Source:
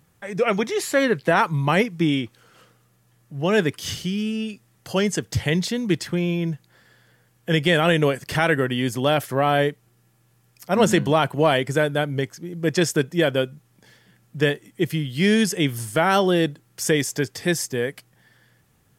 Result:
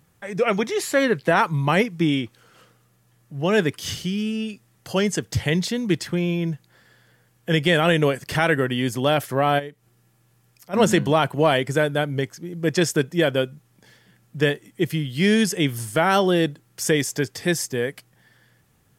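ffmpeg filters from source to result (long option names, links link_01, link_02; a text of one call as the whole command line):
ffmpeg -i in.wav -filter_complex "[0:a]asplit=3[link_01][link_02][link_03];[link_01]afade=type=out:start_time=9.58:duration=0.02[link_04];[link_02]acompressor=threshold=-54dB:ratio=1.5:attack=3.2:release=140:knee=1:detection=peak,afade=type=in:start_time=9.58:duration=0.02,afade=type=out:start_time=10.73:duration=0.02[link_05];[link_03]afade=type=in:start_time=10.73:duration=0.02[link_06];[link_04][link_05][link_06]amix=inputs=3:normalize=0" out.wav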